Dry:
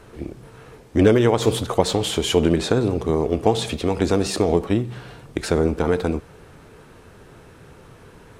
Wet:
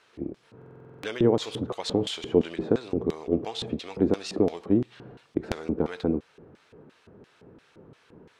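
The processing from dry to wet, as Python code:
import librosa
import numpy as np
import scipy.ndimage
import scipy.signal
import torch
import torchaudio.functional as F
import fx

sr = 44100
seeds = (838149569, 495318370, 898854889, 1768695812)

y = fx.high_shelf(x, sr, hz=4400.0, db=-9.5)
y = fx.filter_lfo_bandpass(y, sr, shape='square', hz=2.9, low_hz=280.0, high_hz=4200.0, q=1.0)
y = fx.buffer_glitch(y, sr, at_s=(0.57,), block=2048, repeats=9)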